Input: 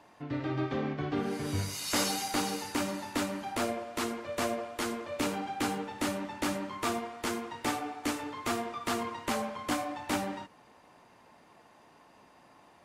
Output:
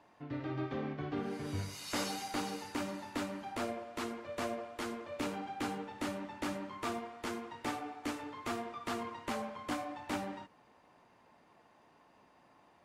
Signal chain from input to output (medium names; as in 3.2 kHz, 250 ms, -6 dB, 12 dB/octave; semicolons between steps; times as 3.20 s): treble shelf 5.7 kHz -7.5 dB; trim -5.5 dB